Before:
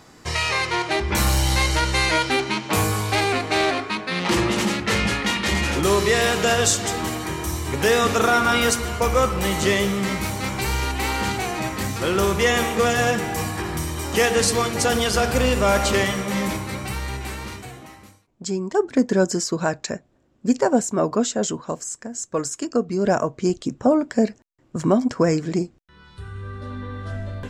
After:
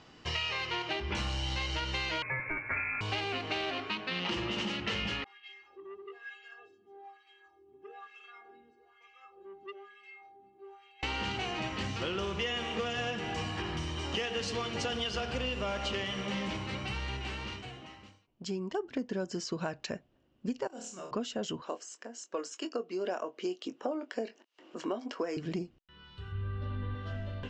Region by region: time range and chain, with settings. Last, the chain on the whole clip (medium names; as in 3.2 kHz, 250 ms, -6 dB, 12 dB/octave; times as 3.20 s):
2.22–3.01 s: comb 3.7 ms, depth 35% + frequency inversion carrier 2.5 kHz
5.24–11.03 s: wah-wah 1.1 Hz 230–2500 Hz, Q 2.5 + inharmonic resonator 390 Hz, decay 0.32 s, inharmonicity 0.008 + transformer saturation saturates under 1.2 kHz
20.67–21.11 s: pre-emphasis filter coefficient 0.9 + hard clipper -23.5 dBFS + flutter echo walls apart 4.6 m, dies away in 0.43 s
21.62–25.37 s: high-pass 300 Hz 24 dB/octave + upward compressor, threshold -36 dBFS + doubling 22 ms -10.5 dB
26.32–26.95 s: low-pass 4.3 kHz + bass shelf 160 Hz +9.5 dB + de-hum 61.78 Hz, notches 9
whole clip: low-pass 5.7 kHz 24 dB/octave; peaking EQ 2.9 kHz +12.5 dB 0.25 oct; compression, threshold -23 dBFS; trim -8 dB